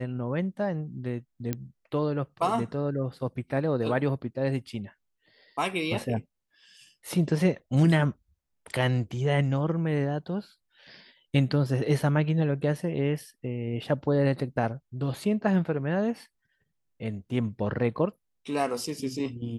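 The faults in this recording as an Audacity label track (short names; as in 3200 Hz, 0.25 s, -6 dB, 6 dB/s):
1.530000	1.530000	pop -15 dBFS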